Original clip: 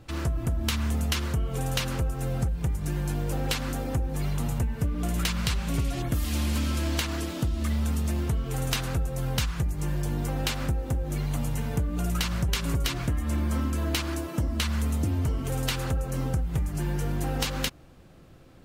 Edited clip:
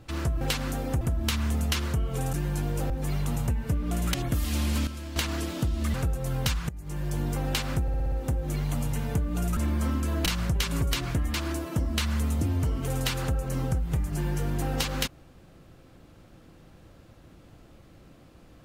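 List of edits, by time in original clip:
1.73–2.85 s: delete
3.42–4.02 s: move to 0.41 s
5.26–5.94 s: delete
6.67–6.96 s: gain -10 dB
7.74–8.86 s: delete
9.61–10.10 s: fade in, from -17 dB
10.74 s: stutter 0.06 s, 6 plays
13.27–13.96 s: move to 12.19 s

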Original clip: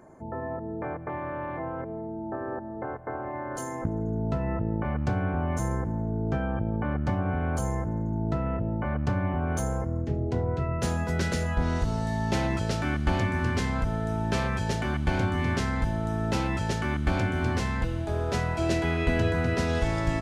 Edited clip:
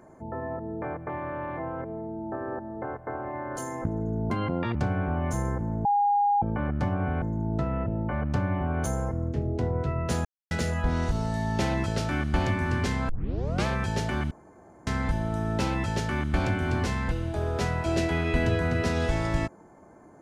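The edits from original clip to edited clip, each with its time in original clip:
4.30–5.01 s: speed 158%
6.11–6.68 s: bleep 816 Hz -19.5 dBFS
7.48–7.95 s: delete
10.98–11.24 s: mute
13.82 s: tape start 0.57 s
15.04–15.60 s: room tone

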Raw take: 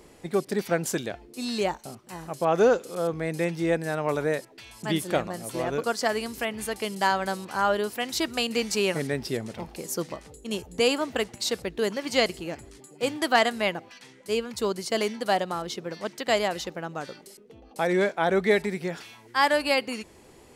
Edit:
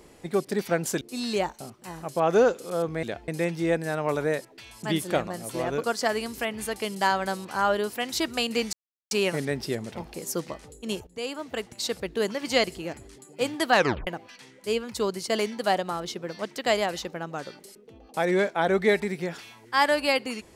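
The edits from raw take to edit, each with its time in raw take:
1.01–1.26 s: move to 3.28 s
8.73 s: insert silence 0.38 s
10.69–11.71 s: fade in linear, from -16 dB
13.36 s: tape stop 0.33 s

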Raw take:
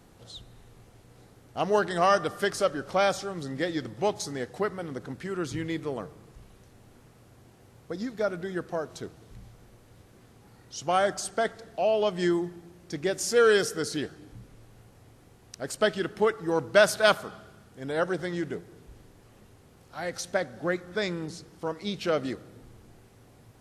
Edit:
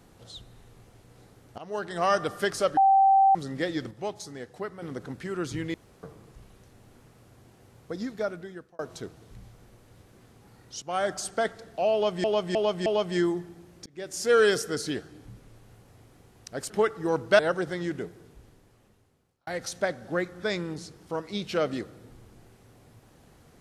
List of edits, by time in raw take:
1.58–2.25 s: fade in, from -19 dB
2.77–3.35 s: bleep 778 Hz -15.5 dBFS
3.91–4.82 s: gain -6.5 dB
5.74–6.03 s: room tone
8.09–8.79 s: fade out
10.82–11.29 s: fade in equal-power, from -13.5 dB
11.93–12.24 s: loop, 4 plays
12.93–13.42 s: fade in
15.77–16.13 s: delete
16.82–17.91 s: delete
18.60–19.99 s: fade out

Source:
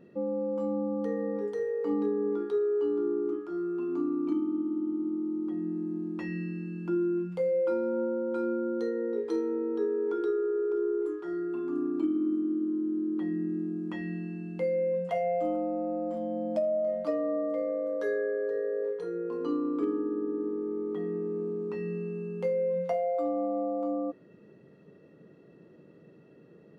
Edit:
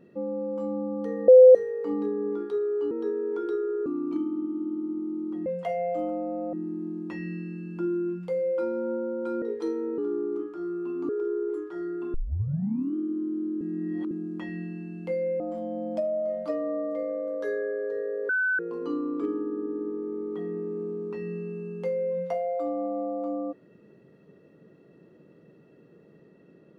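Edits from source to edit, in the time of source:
1.28–1.55 s: bleep 511 Hz -8 dBFS
2.91–4.02 s: swap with 9.66–10.61 s
8.51–9.10 s: delete
11.66 s: tape start 0.81 s
13.13–13.63 s: reverse
14.92–15.99 s: move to 5.62 s
18.88–19.18 s: bleep 1.51 kHz -22 dBFS

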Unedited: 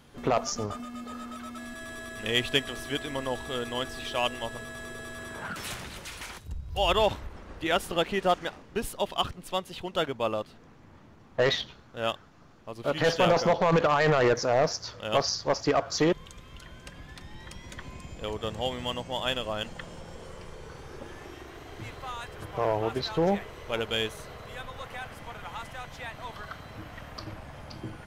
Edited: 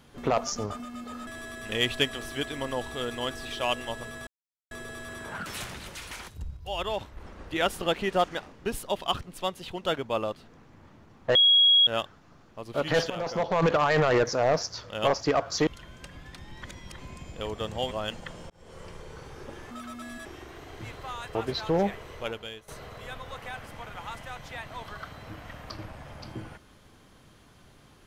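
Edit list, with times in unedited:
1.27–1.81 s: move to 21.24 s
4.81 s: insert silence 0.44 s
6.67–7.27 s: gain -7.5 dB
11.45–11.97 s: bleep 3.31 kHz -15.5 dBFS
13.20–13.78 s: fade in, from -16 dB
15.20–15.50 s: delete
16.07–16.50 s: delete
17.45–17.81 s: reverse
18.74–19.44 s: delete
20.03–20.36 s: fade in linear
22.34–22.83 s: delete
23.65–24.16 s: fade out quadratic, to -16.5 dB

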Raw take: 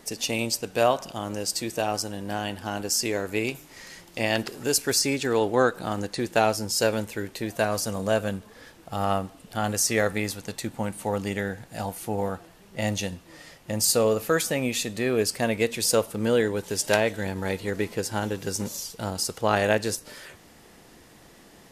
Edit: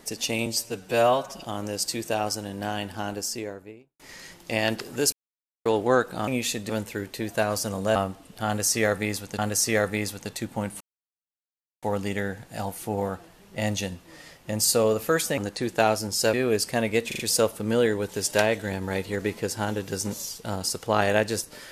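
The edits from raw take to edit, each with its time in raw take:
0.46–1.11 s: stretch 1.5×
2.59–3.67 s: studio fade out
4.80–5.33 s: mute
5.95–6.91 s: swap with 14.58–15.00 s
8.17–9.10 s: delete
9.61–10.53 s: loop, 2 plays
11.03 s: insert silence 1.02 s
15.74 s: stutter 0.04 s, 4 plays

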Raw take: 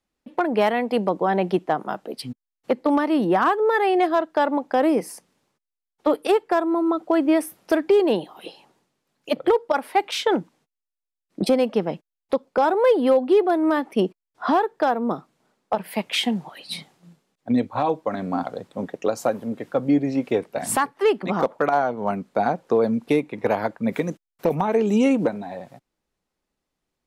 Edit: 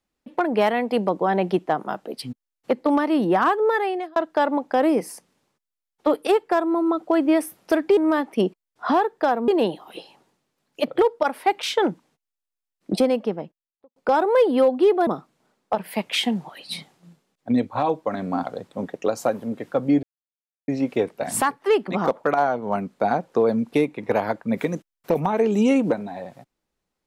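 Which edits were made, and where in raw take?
3.68–4.16 s: fade out linear
11.40–12.45 s: studio fade out
13.56–15.07 s: move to 7.97 s
20.03 s: insert silence 0.65 s

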